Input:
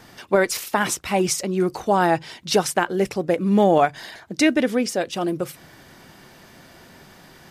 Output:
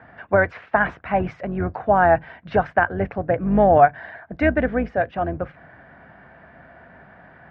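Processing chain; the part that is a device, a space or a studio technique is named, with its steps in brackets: sub-octave bass pedal (octave divider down 2 oct, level -2 dB; cabinet simulation 65–2100 Hz, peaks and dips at 360 Hz -7 dB, 680 Hz +9 dB, 1.6 kHz +8 dB); trim -1.5 dB

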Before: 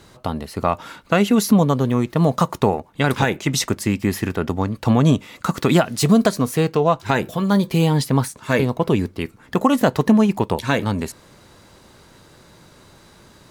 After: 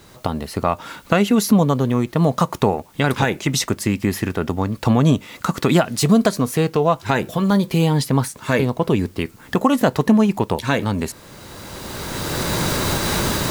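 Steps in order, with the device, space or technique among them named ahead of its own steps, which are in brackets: cheap recorder with automatic gain (white noise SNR 38 dB; recorder AGC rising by 17 dB/s)

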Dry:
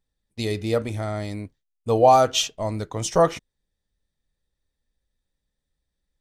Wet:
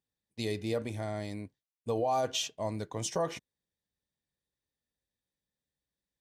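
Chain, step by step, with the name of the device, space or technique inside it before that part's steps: PA system with an anti-feedback notch (high-pass 100 Hz 12 dB/octave; Butterworth band-stop 1.3 kHz, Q 7.6; peak limiter -15 dBFS, peak gain reduction 10.5 dB); trim -7 dB

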